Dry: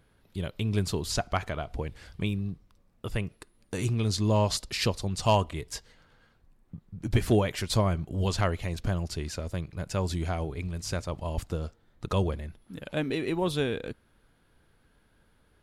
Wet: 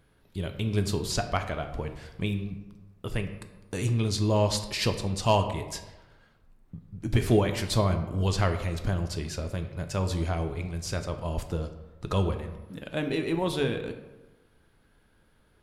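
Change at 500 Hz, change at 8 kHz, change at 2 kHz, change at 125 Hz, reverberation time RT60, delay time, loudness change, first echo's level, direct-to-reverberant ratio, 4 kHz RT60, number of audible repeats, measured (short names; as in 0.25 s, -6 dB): +1.5 dB, +0.5 dB, +1.0 dB, +1.0 dB, 1.1 s, none, +1.0 dB, none, 6.5 dB, 0.60 s, none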